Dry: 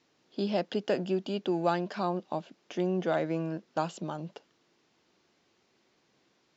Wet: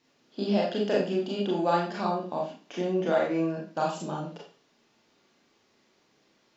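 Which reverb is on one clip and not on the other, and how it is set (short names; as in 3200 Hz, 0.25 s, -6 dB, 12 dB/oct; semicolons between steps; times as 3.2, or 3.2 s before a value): Schroeder reverb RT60 0.38 s, combs from 27 ms, DRR -3.5 dB; gain -1.5 dB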